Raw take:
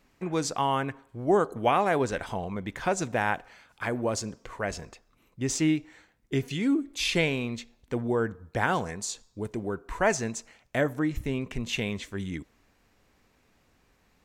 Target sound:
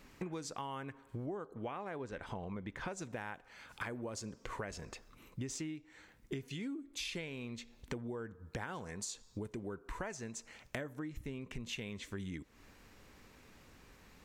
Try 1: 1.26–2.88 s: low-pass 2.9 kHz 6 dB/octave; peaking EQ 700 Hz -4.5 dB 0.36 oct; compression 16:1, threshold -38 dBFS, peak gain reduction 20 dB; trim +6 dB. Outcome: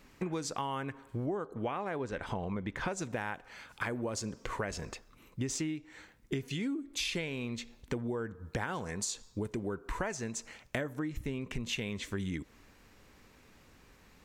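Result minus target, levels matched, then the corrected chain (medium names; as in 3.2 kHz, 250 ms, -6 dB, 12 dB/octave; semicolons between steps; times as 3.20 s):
compression: peak gain reduction -6.5 dB
1.26–2.88 s: low-pass 2.9 kHz 6 dB/octave; peaking EQ 700 Hz -4.5 dB 0.36 oct; compression 16:1, threshold -45 dBFS, peak gain reduction 26.5 dB; trim +6 dB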